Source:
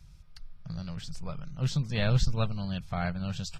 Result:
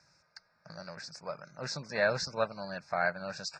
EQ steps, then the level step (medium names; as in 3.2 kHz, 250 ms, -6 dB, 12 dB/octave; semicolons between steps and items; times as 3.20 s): Butterworth band-stop 3.1 kHz, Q 1.5; cabinet simulation 350–7200 Hz, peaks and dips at 590 Hz +8 dB, 900 Hz +4 dB, 1.6 kHz +10 dB, 2.8 kHz +8 dB, 5.1 kHz +6 dB; 0.0 dB